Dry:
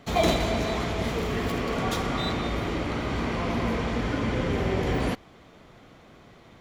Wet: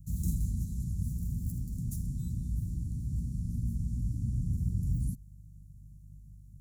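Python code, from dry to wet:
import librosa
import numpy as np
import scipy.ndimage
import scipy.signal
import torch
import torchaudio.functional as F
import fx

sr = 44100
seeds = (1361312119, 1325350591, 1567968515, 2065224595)

y = fx.dmg_buzz(x, sr, base_hz=50.0, harmonics=3, level_db=-51.0, tilt_db=-4, odd_only=False)
y = scipy.signal.sosfilt(scipy.signal.cheby2(4, 70, [580.0, 2600.0], 'bandstop', fs=sr, output='sos'), y)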